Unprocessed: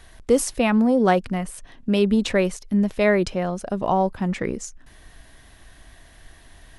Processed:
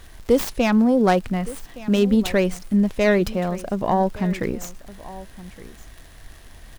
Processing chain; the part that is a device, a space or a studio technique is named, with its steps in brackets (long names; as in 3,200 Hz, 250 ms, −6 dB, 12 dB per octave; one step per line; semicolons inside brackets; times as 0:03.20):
low-shelf EQ 150 Hz +5 dB
record under a worn stylus (stylus tracing distortion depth 0.17 ms; surface crackle 94 per second −35 dBFS; pink noise bed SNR 33 dB)
single-tap delay 1,167 ms −18 dB